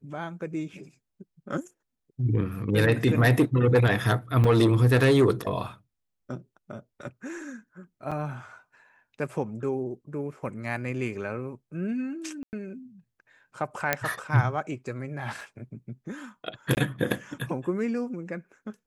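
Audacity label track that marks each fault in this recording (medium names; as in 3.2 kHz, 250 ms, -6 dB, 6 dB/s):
4.440000	4.440000	dropout 3.6 ms
8.110000	8.120000	dropout 6 ms
12.430000	12.530000	dropout 99 ms
13.930000	13.930000	pop -7 dBFS
15.410000	15.410000	dropout 2.7 ms
16.750000	16.770000	dropout 19 ms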